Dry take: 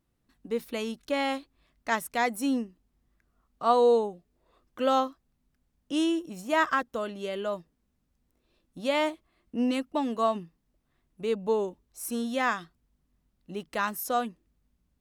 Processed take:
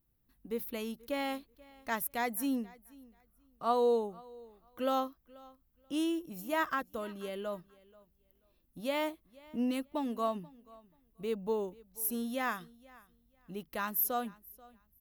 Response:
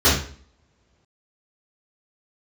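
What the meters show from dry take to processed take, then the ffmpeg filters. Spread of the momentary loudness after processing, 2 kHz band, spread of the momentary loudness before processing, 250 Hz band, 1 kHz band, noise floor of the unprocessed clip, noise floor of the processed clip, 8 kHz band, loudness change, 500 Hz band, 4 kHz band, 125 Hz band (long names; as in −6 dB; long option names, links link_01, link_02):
16 LU, −7.5 dB, 11 LU, −5.5 dB, −7.0 dB, −75 dBFS, −72 dBFS, −2.0 dB, −6.0 dB, −6.5 dB, −7.5 dB, −4.0 dB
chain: -af "aecho=1:1:484|968:0.0708|0.0142,aexciter=amount=6.7:drive=5.7:freq=11000,lowshelf=frequency=150:gain=8.5,volume=-7.5dB"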